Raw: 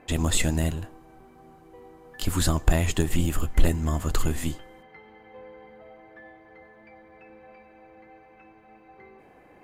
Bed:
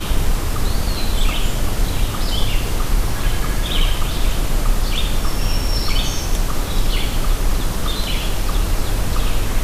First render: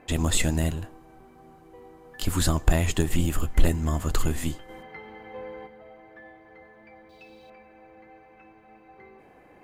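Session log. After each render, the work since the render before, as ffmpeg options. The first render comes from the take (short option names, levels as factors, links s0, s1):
-filter_complex "[0:a]asplit=3[s0][s1][s2];[s0]afade=t=out:st=4.68:d=0.02[s3];[s1]acontrast=71,afade=t=in:st=4.68:d=0.02,afade=t=out:st=5.66:d=0.02[s4];[s2]afade=t=in:st=5.66:d=0.02[s5];[s3][s4][s5]amix=inputs=3:normalize=0,asettb=1/sr,asplit=3[s6][s7][s8];[s6]atrim=end=7.094[s9];[s7]atrim=start=7.09:end=7.5,asetpts=PTS-STARTPTS,afade=t=in:d=0.004:c=qsin,afade=t=out:st=0.406:d=0.004:c=qsin,highshelf=f=2700:t=q:w=3:g=13.5[s10];[s8]atrim=start=7.496[s11];[s9][s10]acrossfade=d=0.004:c1=hsin:c2=qsin[s12];[s12][s11]acrossfade=d=0.004:c1=qsin:c2=hsin"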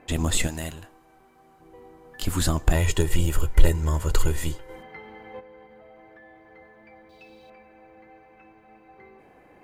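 -filter_complex "[0:a]asettb=1/sr,asplit=3[s0][s1][s2];[s0]atrim=end=0.474[s3];[s1]atrim=start=0.47:end=1.6,asetpts=PTS-STARTPTS,afade=t=in:d=0.004:c=qsin,afade=t=out:st=1.126:d=0.004:c=qsin,lowshelf=f=500:g=-10.5[s4];[s2]atrim=start=1.596[s5];[s3][s4]acrossfade=d=0.004:c1=hsin:c2=qsin[s6];[s6][s5]acrossfade=d=0.004:c1=qsin:c2=hsin,asettb=1/sr,asplit=3[s7][s8][s9];[s7]atrim=end=2.754[s10];[s8]atrim=start=2.75:end=4.76,asetpts=PTS-STARTPTS,afade=t=in:d=0.004:c=qsin,afade=t=out:st=2.006:d=0.004:c=qsin,aecho=1:1:2.1:0.65,atrim=end_sample=88641[s11];[s9]atrim=start=4.756[s12];[s10][s11]acrossfade=d=0.004:c1=hsin:c2=qsin[s13];[s13][s12]acrossfade=d=0.004:c1=qsin:c2=hsin,asplit=3[s14][s15][s16];[s14]afade=t=out:st=5.39:d=0.02[s17];[s15]acompressor=threshold=0.00562:ratio=6:attack=3.2:release=140:knee=1:detection=peak,afade=t=in:st=5.39:d=0.02,afade=t=out:st=6.46:d=0.02[s18];[s16]afade=t=in:st=6.46:d=0.02[s19];[s17][s18][s19]amix=inputs=3:normalize=0"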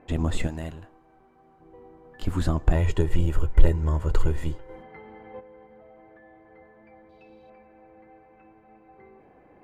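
-af "lowpass=f=1100:p=1"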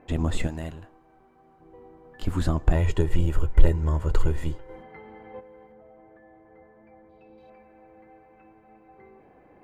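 -filter_complex "[0:a]asettb=1/sr,asplit=3[s0][s1][s2];[s0]atrim=end=5.724[s3];[s1]atrim=start=5.72:end=7.38,asetpts=PTS-STARTPTS,afade=t=in:d=0.004:c=qsin,afade=t=out:st=1.656:d=0.004:c=qsin,lowpass=f=1400:p=1[s4];[s2]atrim=start=7.376[s5];[s3][s4]acrossfade=d=0.004:c1=hsin:c2=qsin[s6];[s6][s5]acrossfade=d=0.004:c1=qsin:c2=hsin"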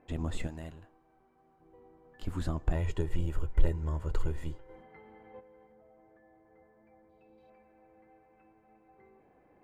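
-af "volume=0.355"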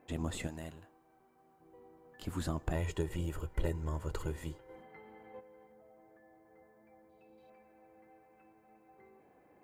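-af "highpass=f=110:p=1,highshelf=f=6800:g=9.5"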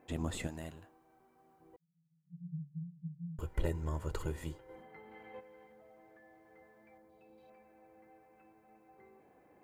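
-filter_complex "[0:a]asettb=1/sr,asplit=3[s0][s1][s2];[s0]atrim=end=1.764[s3];[s1]atrim=start=1.76:end=3.39,asetpts=PTS-STARTPTS,afade=t=in:d=0.004:c=qsin,afade=t=out:st=1.626:d=0.004:c=qsin,asuperpass=centerf=160:order=20:qfactor=3.9[s4];[s2]atrim=start=3.386[s5];[s3][s4]acrossfade=d=0.004:c1=hsin:c2=qsin[s6];[s6][s5]acrossfade=d=0.004:c1=qsin:c2=hsin,asettb=1/sr,asplit=3[s7][s8][s9];[s7]atrim=end=5.114[s10];[s8]atrim=start=5.11:end=6.98,asetpts=PTS-STARTPTS,afade=t=in:d=0.004:c=qsin,afade=t=out:st=1.866:d=0.004:c=qsin,equalizer=f=2700:t=o:w=1.7:g=8[s11];[s9]atrim=start=6.976[s12];[s10][s11]acrossfade=d=0.004:c1=hsin:c2=qsin[s13];[s13][s12]acrossfade=d=0.004:c1=qsin:c2=hsin"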